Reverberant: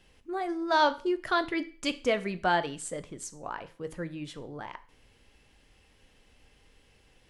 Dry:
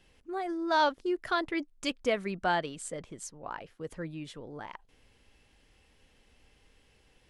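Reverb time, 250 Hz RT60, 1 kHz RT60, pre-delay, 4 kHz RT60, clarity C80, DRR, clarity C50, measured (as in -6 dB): 0.40 s, 0.40 s, 0.40 s, 13 ms, 0.40 s, 21.5 dB, 11.0 dB, 17.5 dB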